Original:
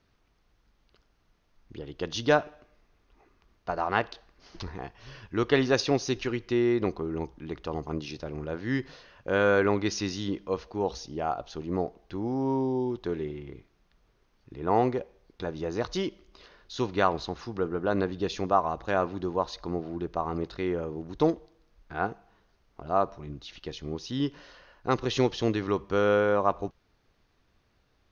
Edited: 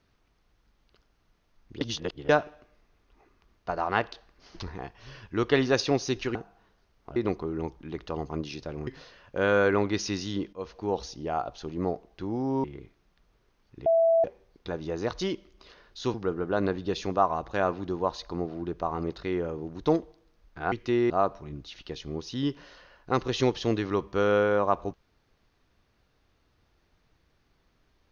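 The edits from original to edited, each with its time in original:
1.81–2.29 reverse
6.35–6.73 swap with 22.06–22.87
8.44–8.79 cut
10.45–10.72 fade in, from -13.5 dB
12.56–13.38 cut
14.6–14.98 bleep 661 Hz -18 dBFS
16.88–17.48 cut

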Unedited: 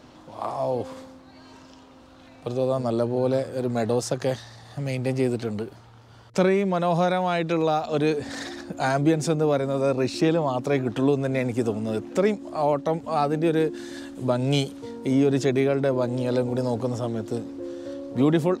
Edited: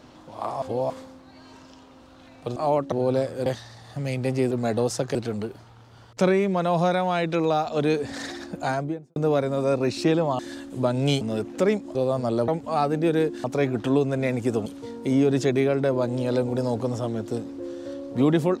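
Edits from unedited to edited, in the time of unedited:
0.62–0.9 reverse
2.56–3.09 swap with 12.52–12.88
3.63–4.27 move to 5.32
8.7–9.33 studio fade out
10.56–11.78 swap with 13.84–14.66

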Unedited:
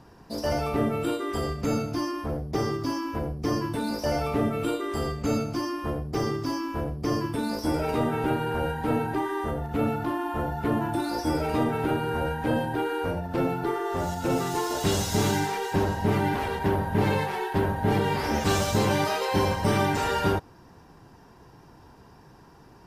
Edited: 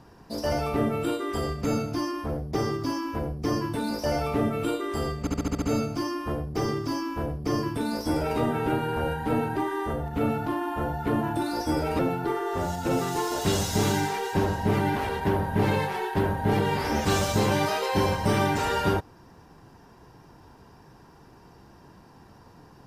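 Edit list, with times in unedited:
5.2 stutter 0.07 s, 7 plays
11.57–13.38 cut

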